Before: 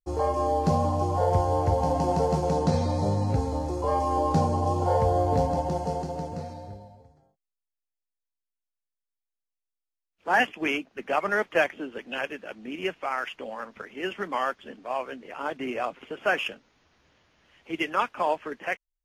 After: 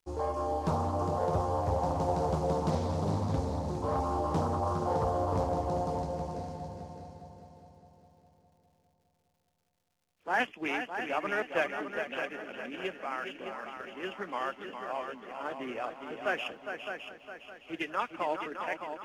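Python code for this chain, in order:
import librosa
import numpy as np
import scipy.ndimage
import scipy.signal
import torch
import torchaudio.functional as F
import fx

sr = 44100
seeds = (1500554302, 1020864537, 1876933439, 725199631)

y = fx.echo_heads(x, sr, ms=204, heads='second and third', feedback_pct=45, wet_db=-8)
y = fx.dmg_crackle(y, sr, seeds[0], per_s=240.0, level_db=-57.0)
y = fx.doppler_dist(y, sr, depth_ms=0.57)
y = y * 10.0 ** (-7.0 / 20.0)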